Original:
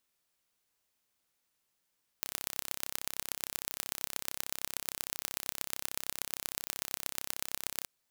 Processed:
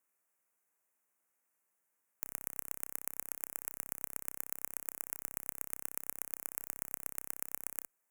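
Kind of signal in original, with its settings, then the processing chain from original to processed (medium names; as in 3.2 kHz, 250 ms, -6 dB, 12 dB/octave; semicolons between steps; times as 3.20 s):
pulse train 33.1 per s, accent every 4, -5 dBFS 5.64 s
high-pass 330 Hz 6 dB/octave; Chebyshev shaper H 8 -20 dB, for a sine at -5 dBFS; Butterworth band-stop 4 kHz, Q 0.84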